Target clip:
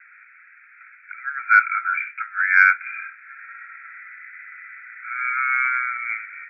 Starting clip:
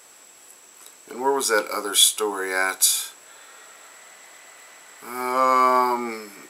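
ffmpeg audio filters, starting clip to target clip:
ffmpeg -i in.wav -af "asuperpass=centerf=1800:order=20:qfactor=1.6,acontrast=31,volume=6dB" out.wav

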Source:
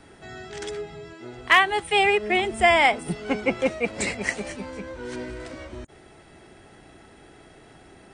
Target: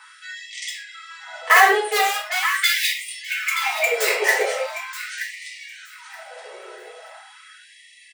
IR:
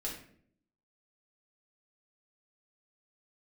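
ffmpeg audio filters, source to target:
-filter_complex "[0:a]acrossover=split=510|2300[link_01][link_02][link_03];[link_02]aphaser=in_gain=1:out_gain=1:delay=2.7:decay=0.48:speed=0.28:type=triangular[link_04];[link_03]aeval=exprs='(mod(18.8*val(0)+1,2)-1)/18.8':channel_layout=same[link_05];[link_01][link_04][link_05]amix=inputs=3:normalize=0,asettb=1/sr,asplit=3[link_06][link_07][link_08];[link_06]atrim=end=1.714[link_09];[link_07]atrim=start=1.71:end=3.08,asetpts=PTS-STARTPTS,afade=type=in:duration=0.004:curve=qsin,afade=type=out:start_time=1.366:duration=0.004:curve=qsin,aeval=exprs='0.631*(cos(1*acos(clip(val(0)/0.631,-1,1)))-cos(1*PI/2))+0.224*(cos(3*acos(clip(val(0)/0.631,-1,1)))-cos(3*PI/2))+0.0501*(cos(7*acos(clip(val(0)/0.631,-1,1)))-cos(7*PI/2))':channel_layout=same[link_10];[link_08]atrim=start=3.076[link_11];[link_09][link_10]acrossfade=duration=0.004:curve1=hsin:curve2=qsin[link_12];[link_12][link_11]acrossfade=duration=0.004:curve1=qsin:curve2=hsin,aecho=1:1:925|1850|2775:0.251|0.0527|0.0111[link_13];[1:a]atrim=start_sample=2205,afade=type=out:start_time=0.19:duration=0.01,atrim=end_sample=8820[link_14];[link_13][link_14]afir=irnorm=-1:irlink=0,alimiter=level_in=10dB:limit=-1dB:release=50:level=0:latency=1,afftfilt=real='re*gte(b*sr/1024,350*pow(1800/350,0.5+0.5*sin(2*PI*0.41*pts/sr)))':imag='im*gte(b*sr/1024,350*pow(1800/350,0.5+0.5*sin(2*PI*0.41*pts/sr)))':win_size=1024:overlap=0.75,volume=-1dB"

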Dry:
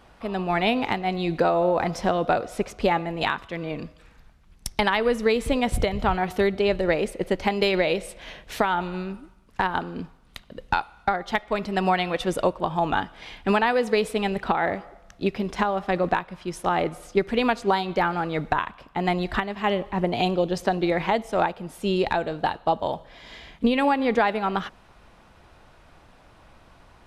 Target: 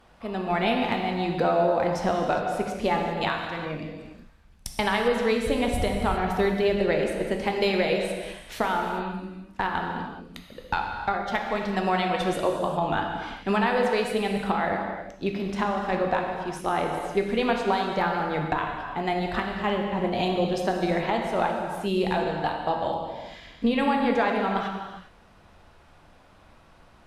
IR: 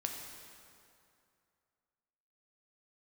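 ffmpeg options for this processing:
-filter_complex "[1:a]atrim=start_sample=2205,afade=type=out:start_time=0.36:duration=0.01,atrim=end_sample=16317,asetrate=33075,aresample=44100[link_01];[0:a][link_01]afir=irnorm=-1:irlink=0,volume=-4dB"

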